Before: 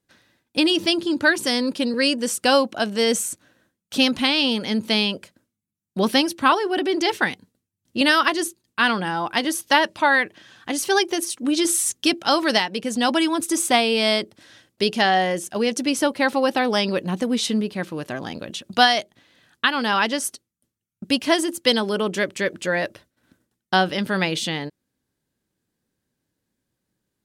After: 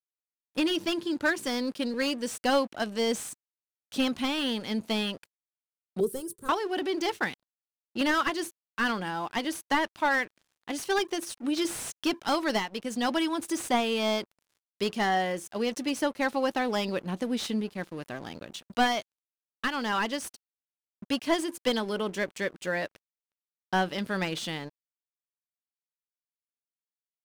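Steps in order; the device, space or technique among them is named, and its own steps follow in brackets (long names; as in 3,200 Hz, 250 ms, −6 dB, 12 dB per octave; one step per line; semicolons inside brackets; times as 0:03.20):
early transistor amplifier (dead-zone distortion −42 dBFS; slew-rate limiting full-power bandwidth 280 Hz)
0:06.00–0:06.49: drawn EQ curve 170 Hz 0 dB, 280 Hz −17 dB, 410 Hz +10 dB, 700 Hz −23 dB, 1,400 Hz −16 dB, 2,100 Hz −25 dB, 3,500 Hz −19 dB, 5,700 Hz −13 dB, 8,300 Hz +5 dB
level −7 dB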